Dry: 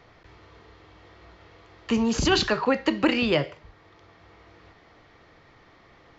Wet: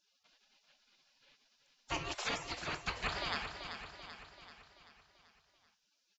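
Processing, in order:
gate on every frequency bin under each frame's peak −25 dB weak
high-shelf EQ 2,200 Hz −9.5 dB
repeating echo 386 ms, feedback 54%, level −8 dB
level +5 dB

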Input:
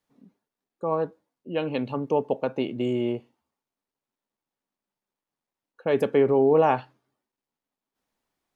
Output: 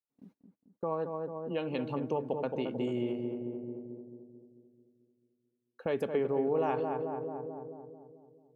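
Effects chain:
noise gate −56 dBFS, range −25 dB
feedback echo with a low-pass in the loop 220 ms, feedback 59%, low-pass 1,100 Hz, level −5.5 dB
downward compressor 2 to 1, threshold −36 dBFS, peak gain reduction 12 dB

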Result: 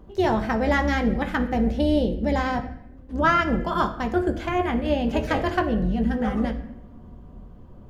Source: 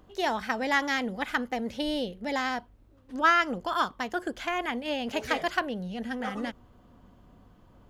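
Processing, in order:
sub-octave generator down 2 octaves, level −4 dB
tilt shelving filter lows +6.5 dB, about 900 Hz
on a send: convolution reverb RT60 0.75 s, pre-delay 5 ms, DRR 4 dB
on the sum: level +3 dB

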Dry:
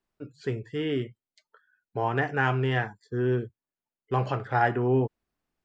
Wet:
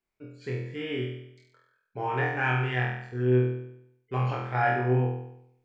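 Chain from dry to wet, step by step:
parametric band 2,300 Hz +12 dB 0.25 octaves
on a send: flutter between parallel walls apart 4.1 metres, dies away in 0.75 s
on the sum: level −7 dB

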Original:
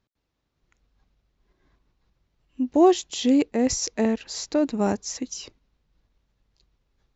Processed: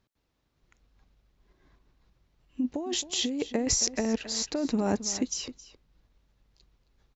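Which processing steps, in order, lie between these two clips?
compressor whose output falls as the input rises −25 dBFS, ratio −1
slap from a distant wall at 46 metres, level −14 dB
level −2.5 dB

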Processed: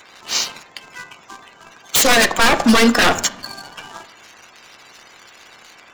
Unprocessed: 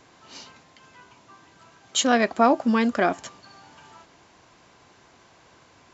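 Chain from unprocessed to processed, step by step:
spectral magnitudes quantised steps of 30 dB
spectral tilt +3 dB per octave
in parallel at +0.5 dB: downward compressor, threshold −35 dBFS, peak gain reduction 21 dB
on the sum: leveller curve on the samples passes 2
wave folding −13.5 dBFS
on a send at −8.5 dB: high-frequency loss of the air 230 metres + convolution reverb RT60 0.65 s, pre-delay 3 ms
on the sum: level +5.5 dB

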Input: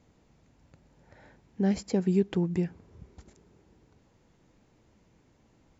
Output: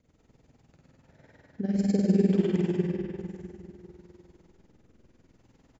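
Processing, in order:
rotating-speaker cabinet horn 8 Hz, later 0.65 Hz, at 0:00.61
reverse bouncing-ball delay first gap 50 ms, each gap 1.3×, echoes 5
comb and all-pass reverb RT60 2.8 s, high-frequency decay 0.65×, pre-delay 45 ms, DRR −3 dB
amplitude modulation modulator 20 Hz, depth 55%

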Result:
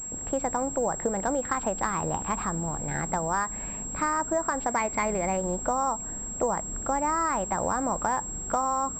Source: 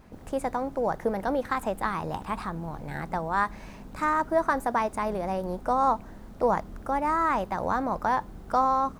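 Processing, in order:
downward compressor 6 to 1, threshold −27 dBFS, peak gain reduction 9 dB
0:04.68–0:05.37: parametric band 2,200 Hz +13 dB 0.32 octaves
switching amplifier with a slow clock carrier 7,600 Hz
level +3.5 dB

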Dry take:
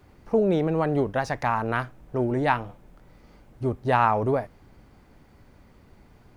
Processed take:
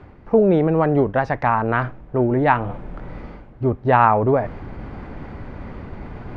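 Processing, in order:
low-pass filter 2,200 Hz 12 dB per octave
reversed playback
upward compression, threshold −26 dBFS
reversed playback
level +6.5 dB

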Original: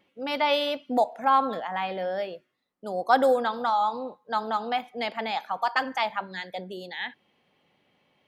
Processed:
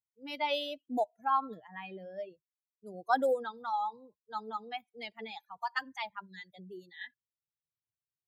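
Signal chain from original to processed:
spectral dynamics exaggerated over time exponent 2
level −5.5 dB

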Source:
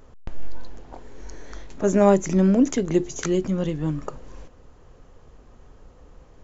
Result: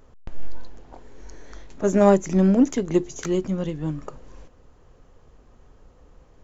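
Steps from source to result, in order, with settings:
in parallel at −7 dB: soft clipping −21.5 dBFS, distortion −8 dB
on the sum: expander for the loud parts 1.5 to 1, over −25 dBFS

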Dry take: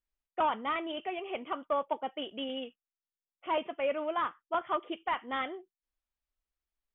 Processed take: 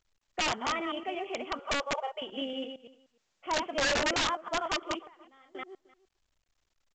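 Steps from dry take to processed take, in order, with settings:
delay that plays each chunk backwards 115 ms, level −5 dB
0:01.59–0:02.22: linear-phase brick-wall high-pass 380 Hz
0:03.72–0:04.41: parametric band 580 Hz +6 dB 2.7 octaves
0:05.06–0:05.55: gate with flip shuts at −39 dBFS, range −27 dB
slap from a distant wall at 52 metres, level −22 dB
wrap-around overflow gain 22.5 dB
mu-law 128 kbit/s 16,000 Hz

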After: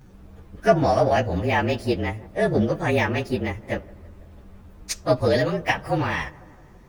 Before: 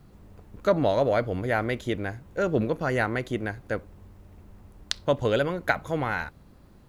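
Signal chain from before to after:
partials spread apart or drawn together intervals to 112%
delay with a low-pass on its return 165 ms, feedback 62%, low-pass 1,500 Hz, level −22 dB
level +7 dB

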